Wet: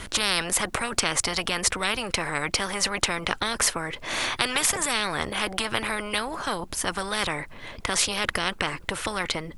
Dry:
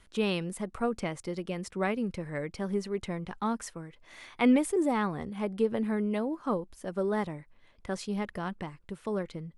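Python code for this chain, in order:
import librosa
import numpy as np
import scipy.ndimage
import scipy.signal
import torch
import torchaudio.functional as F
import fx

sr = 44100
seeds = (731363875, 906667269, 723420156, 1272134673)

y = fx.spectral_comp(x, sr, ratio=10.0)
y = y * 10.0 ** (9.0 / 20.0)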